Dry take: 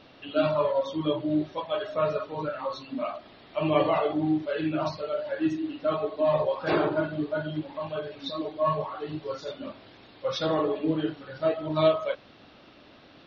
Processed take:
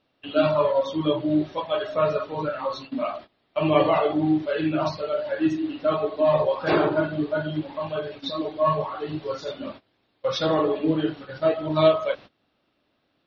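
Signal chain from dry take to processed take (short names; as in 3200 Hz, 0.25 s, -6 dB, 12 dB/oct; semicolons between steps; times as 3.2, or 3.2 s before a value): gate -43 dBFS, range -22 dB; gain +4 dB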